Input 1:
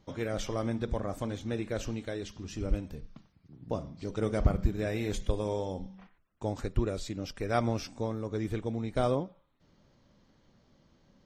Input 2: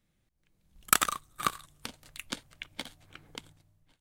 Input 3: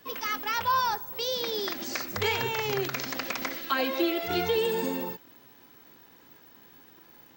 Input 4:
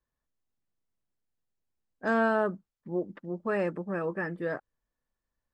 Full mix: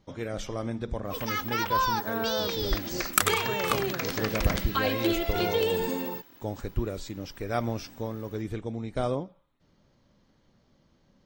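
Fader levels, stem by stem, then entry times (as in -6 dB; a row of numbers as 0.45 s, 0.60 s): -0.5 dB, 0.0 dB, -0.5 dB, -6.5 dB; 0.00 s, 2.25 s, 1.05 s, 0.00 s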